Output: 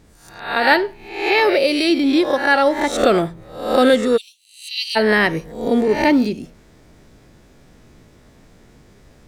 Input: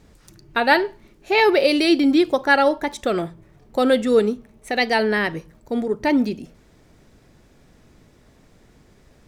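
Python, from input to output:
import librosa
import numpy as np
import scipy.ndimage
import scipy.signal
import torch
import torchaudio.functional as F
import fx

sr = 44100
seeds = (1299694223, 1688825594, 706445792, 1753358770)

y = fx.spec_swells(x, sr, rise_s=0.57)
y = fx.steep_highpass(y, sr, hz=2600.0, slope=72, at=(4.16, 4.95), fade=0.02)
y = fx.rider(y, sr, range_db=5, speed_s=0.5)
y = fx.quant_float(y, sr, bits=8)
y = y * librosa.db_to_amplitude(2.0)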